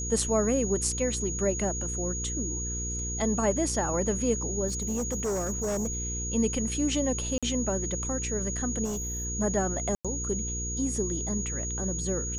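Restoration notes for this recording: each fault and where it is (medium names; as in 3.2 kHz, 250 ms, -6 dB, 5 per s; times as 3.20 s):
hum 60 Hz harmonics 8 -35 dBFS
whine 6.7 kHz -33 dBFS
4.67–6.10 s: clipped -26 dBFS
7.38–7.43 s: dropout 46 ms
8.84–9.25 s: clipped -29 dBFS
9.95–10.05 s: dropout 96 ms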